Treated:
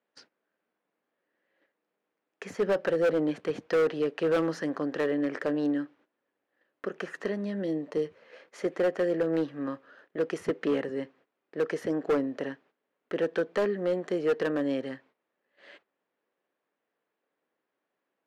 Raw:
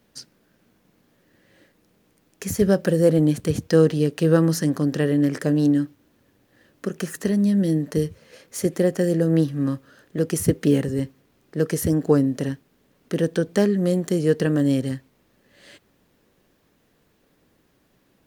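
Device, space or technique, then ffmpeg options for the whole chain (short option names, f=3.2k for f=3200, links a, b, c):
walkie-talkie: -filter_complex "[0:a]highpass=480,lowpass=2.3k,asoftclip=type=hard:threshold=-20.5dB,agate=range=-14dB:threshold=-57dB:ratio=16:detection=peak,asettb=1/sr,asplit=3[a][b][c];[a]atrim=end=7.644[d];[b]atrim=start=7.64:end=8.05,asetpts=PTS-STARTPTS,afade=t=in:d=0.004:c=qsin,afade=t=out:st=0.406:d=0.004:c=qsin,equalizer=f=1.6k:t=o:w=0.52:g=-9.5[e];[c]atrim=start=8.046[f];[d][e]acrossfade=d=0.004:c1=hsin:c2=qsin[g];[g][f]acrossfade=d=0.004:c1=qsin:c2=hsin"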